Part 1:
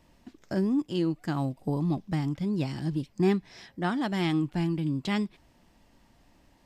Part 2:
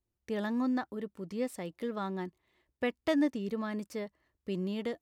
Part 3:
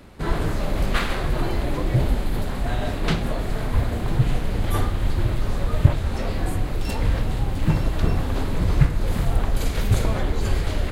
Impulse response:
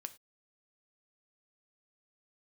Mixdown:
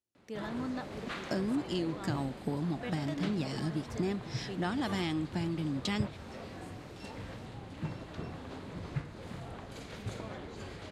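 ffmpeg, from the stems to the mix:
-filter_complex "[0:a]adelay=800,volume=1.41[s0];[1:a]volume=0.473[s1];[2:a]adelay=150,volume=0.178[s2];[s0][s1]amix=inputs=2:normalize=0,aemphasis=mode=production:type=50fm,acompressor=threshold=0.0316:ratio=6,volume=1[s3];[s2][s3]amix=inputs=2:normalize=0,highpass=130,lowpass=7200"

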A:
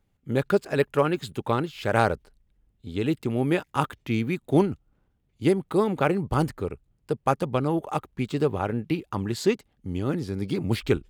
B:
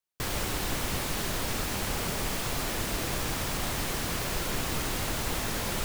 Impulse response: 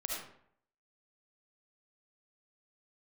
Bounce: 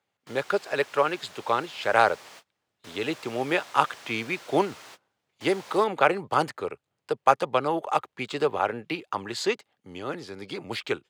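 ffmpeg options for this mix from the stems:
-filter_complex "[0:a]bandreject=f=5600:w=26,volume=1.33,asplit=2[s0][s1];[1:a]volume=0.2[s2];[s1]apad=whole_len=257580[s3];[s2][s3]sidechaingate=range=0.0126:threshold=0.00251:ratio=16:detection=peak[s4];[s0][s4]amix=inputs=2:normalize=0,highpass=f=100:w=0.5412,highpass=f=100:w=1.3066,acrossover=split=470 7600:gain=0.126 1 0.251[s5][s6][s7];[s5][s6][s7]amix=inputs=3:normalize=0,dynaudnorm=f=240:g=17:m=1.58"

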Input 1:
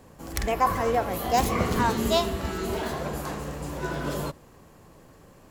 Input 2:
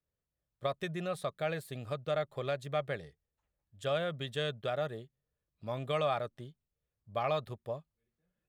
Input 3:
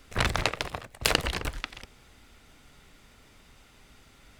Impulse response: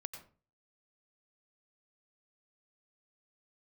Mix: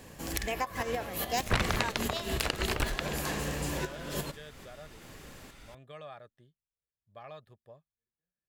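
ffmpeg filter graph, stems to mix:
-filter_complex "[0:a]highshelf=f=1900:t=q:w=1.5:g=6,volume=1.06[s0];[1:a]volume=0.178,asplit=2[s1][s2];[2:a]alimiter=limit=0.251:level=0:latency=1:release=308,adelay=1350,volume=1.33[s3];[s2]apad=whole_len=242912[s4];[s0][s4]sidechaincompress=threshold=0.00126:ratio=8:attack=5.7:release=118[s5];[s5][s1]amix=inputs=2:normalize=0,equalizer=f=1700:w=7.9:g=8.5,acompressor=threshold=0.0398:ratio=5,volume=1[s6];[s3][s6]amix=inputs=2:normalize=0,alimiter=limit=0.237:level=0:latency=1:release=388"

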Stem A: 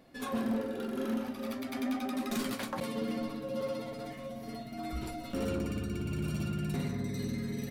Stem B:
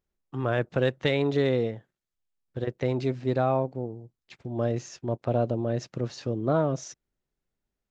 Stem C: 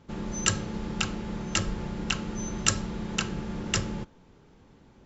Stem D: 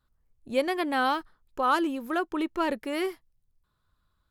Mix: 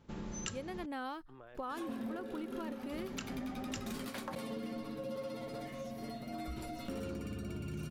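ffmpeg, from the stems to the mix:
-filter_complex "[0:a]adelay=1550,volume=0.891[s0];[1:a]highpass=f=370:p=1,acompressor=threshold=0.02:ratio=10,adelay=950,volume=0.141[s1];[2:a]volume=0.447,asplit=3[s2][s3][s4];[s2]atrim=end=0.86,asetpts=PTS-STARTPTS,afade=t=out:st=0.856:d=0.004:c=hsin[s5];[s3]atrim=start=0.86:end=2.92,asetpts=PTS-STARTPTS,volume=0[s6];[s4]atrim=start=2.92,asetpts=PTS-STARTPTS,afade=t=in:d=0.004:c=hsin[s7];[s5][s6][s7]concat=n=3:v=0:a=1[s8];[3:a]lowshelf=f=310:g=9.5,volume=0.299[s9];[s0][s1][s8][s9]amix=inputs=4:normalize=0,acompressor=threshold=0.0126:ratio=6"

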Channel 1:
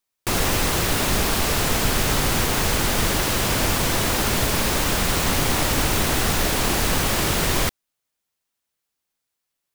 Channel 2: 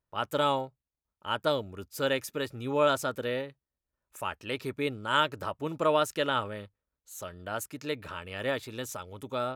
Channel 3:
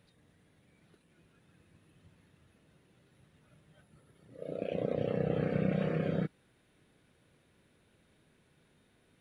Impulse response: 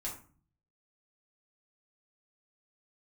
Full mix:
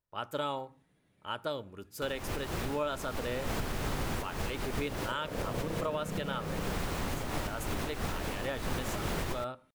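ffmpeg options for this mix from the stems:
-filter_complex "[0:a]highshelf=f=2600:g=-10,adelay=1750,volume=0.376[s0];[1:a]volume=0.531,asplit=3[s1][s2][s3];[s2]volume=0.211[s4];[2:a]adelay=500,volume=0.422,asplit=2[s5][s6];[s6]volume=0.596[s7];[s3]apad=whole_len=506831[s8];[s0][s8]sidechaincompress=threshold=0.00631:ratio=3:attack=6.1:release=149[s9];[3:a]atrim=start_sample=2205[s10];[s4][s7]amix=inputs=2:normalize=0[s11];[s11][s10]afir=irnorm=-1:irlink=0[s12];[s9][s1][s5][s12]amix=inputs=4:normalize=0,alimiter=limit=0.0708:level=0:latency=1:release=295"

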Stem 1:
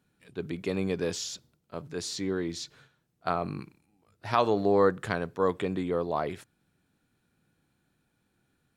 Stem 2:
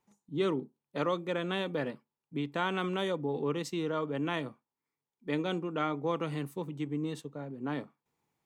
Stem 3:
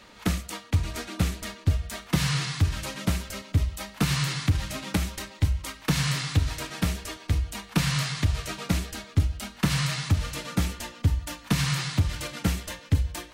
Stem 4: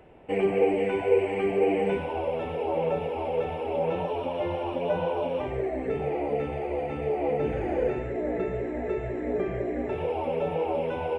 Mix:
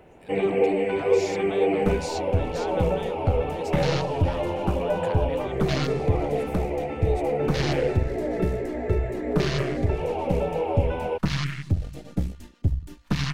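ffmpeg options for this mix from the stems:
-filter_complex "[0:a]acompressor=threshold=0.02:ratio=6,volume=1.26[s0];[1:a]volume=0.841[s1];[2:a]aeval=exprs='if(lt(val(0),0),0.447*val(0),val(0))':c=same,afwtdn=0.02,adelay=1600,volume=1.26[s2];[3:a]volume=1.19[s3];[s0][s1]amix=inputs=2:normalize=0,acompressor=threshold=0.0224:ratio=6,volume=1[s4];[s2][s3][s4]amix=inputs=3:normalize=0"

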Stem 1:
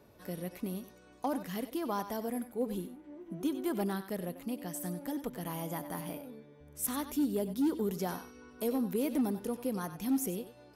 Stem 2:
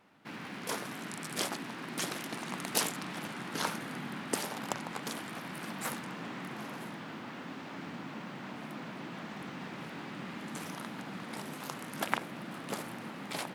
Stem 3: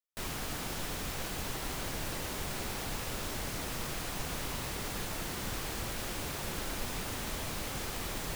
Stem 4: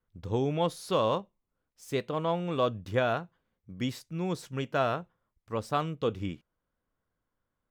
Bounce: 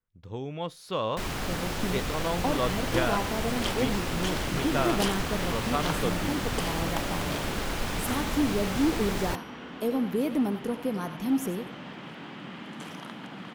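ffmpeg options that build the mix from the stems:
-filter_complex "[0:a]adelay=1200,volume=0.841[s0];[1:a]equalizer=f=3100:w=5.2:g=8,adelay=2250,volume=0.562[s1];[2:a]adelay=1000,volume=1.12[s2];[3:a]bass=f=250:g=2,treble=f=4000:g=-11,crystalizer=i=5.5:c=0,volume=0.355[s3];[s0][s1][s2][s3]amix=inputs=4:normalize=0,highshelf=f=6200:g=-10,dynaudnorm=f=130:g=13:m=2"

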